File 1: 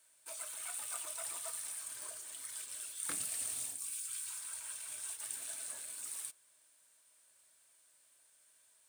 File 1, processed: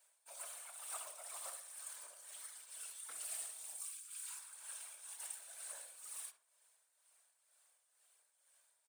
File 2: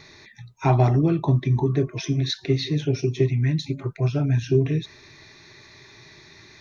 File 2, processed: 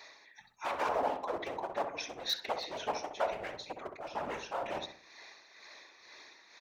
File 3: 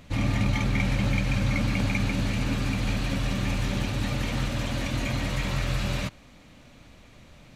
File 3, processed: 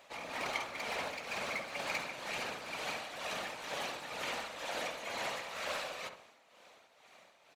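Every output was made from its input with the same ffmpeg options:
-filter_complex "[0:a]aeval=exprs='0.112*(abs(mod(val(0)/0.112+3,4)-2)-1)':c=same,tremolo=f=2.1:d=0.6,highpass=f=680:t=q:w=1.5,afftfilt=real='hypot(re,im)*cos(2*PI*random(0))':imag='hypot(re,im)*sin(2*PI*random(1))':win_size=512:overlap=0.75,asplit=2[a][b];[b]adelay=65,lowpass=f=1.4k:p=1,volume=-6dB,asplit=2[c][d];[d]adelay=65,lowpass=f=1.4k:p=1,volume=0.44,asplit=2[e][f];[f]adelay=65,lowpass=f=1.4k:p=1,volume=0.44,asplit=2[g][h];[h]adelay=65,lowpass=f=1.4k:p=1,volume=0.44,asplit=2[i][j];[j]adelay=65,lowpass=f=1.4k:p=1,volume=0.44[k];[c][e][g][i][k]amix=inputs=5:normalize=0[l];[a][l]amix=inputs=2:normalize=0,volume=2dB"

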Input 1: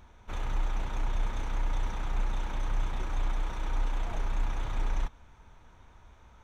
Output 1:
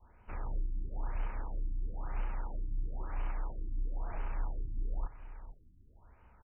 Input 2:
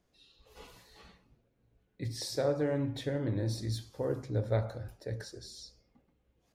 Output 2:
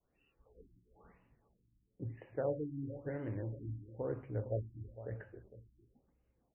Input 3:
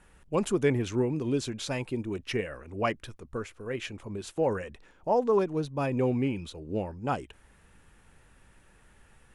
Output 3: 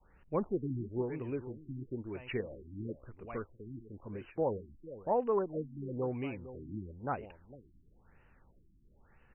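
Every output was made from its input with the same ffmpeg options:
-filter_complex "[0:a]adynamicequalizer=threshold=0.00708:dfrequency=200:dqfactor=0.75:tfrequency=200:tqfactor=0.75:attack=5:release=100:ratio=0.375:range=4:mode=cutabove:tftype=bell,asplit=2[a][b];[b]aecho=0:1:457:0.211[c];[a][c]amix=inputs=2:normalize=0,afftfilt=real='re*lt(b*sr/1024,340*pow(3100/340,0.5+0.5*sin(2*PI*1*pts/sr)))':imag='im*lt(b*sr/1024,340*pow(3100/340,0.5+0.5*sin(2*PI*1*pts/sr)))':win_size=1024:overlap=0.75,volume=-5dB"

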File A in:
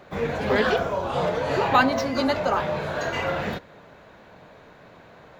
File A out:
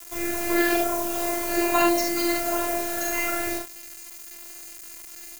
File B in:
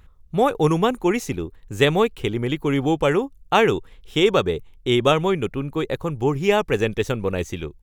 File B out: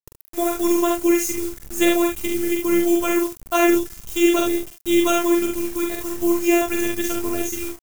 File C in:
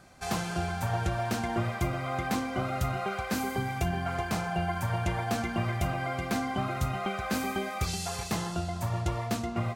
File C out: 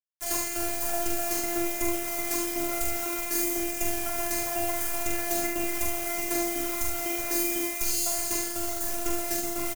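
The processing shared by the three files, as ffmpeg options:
-af "afftfilt=real='hypot(re,im)*cos(PI*b)':imag='0':win_size=512:overlap=0.75,acrusher=bits=6:mix=0:aa=0.000001,aphaser=in_gain=1:out_gain=1:delay=1:decay=0.21:speed=1.1:type=triangular,aexciter=amount=3.5:drive=6.6:freq=5.7k,aecho=1:1:44|73:0.631|0.422"

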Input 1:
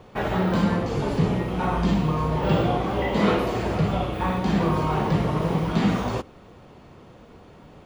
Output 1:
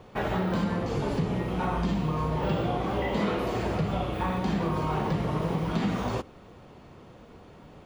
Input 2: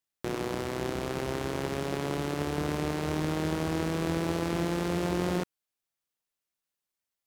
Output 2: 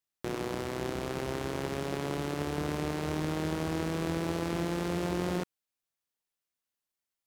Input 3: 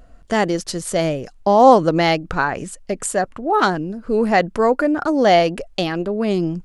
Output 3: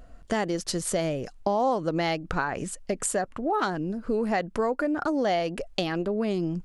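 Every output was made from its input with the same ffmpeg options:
-af "acompressor=threshold=-22dB:ratio=4,volume=-2dB"

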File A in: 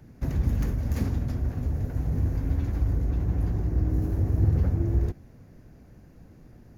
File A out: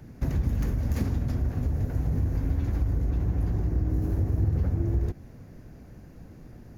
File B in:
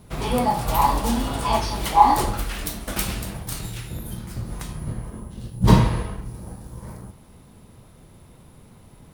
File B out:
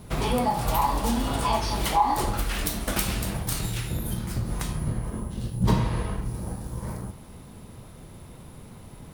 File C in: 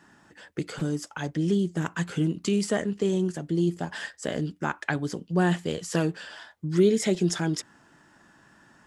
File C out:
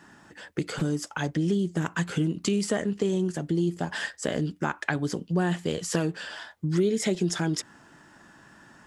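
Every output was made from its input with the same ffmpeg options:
-af "acompressor=threshold=-28dB:ratio=2.5,volume=4dB"

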